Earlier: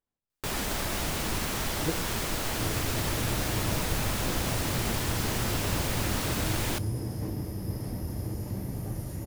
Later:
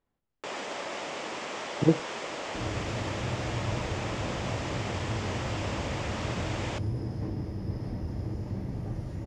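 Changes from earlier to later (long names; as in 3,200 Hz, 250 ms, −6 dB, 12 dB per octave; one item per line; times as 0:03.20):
speech +11.0 dB
first sound: add loudspeaker in its box 400–8,200 Hz, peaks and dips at 550 Hz +4 dB, 1,500 Hz −4 dB, 4,100 Hz −5 dB, 7,400 Hz +5 dB
master: add high-frequency loss of the air 140 metres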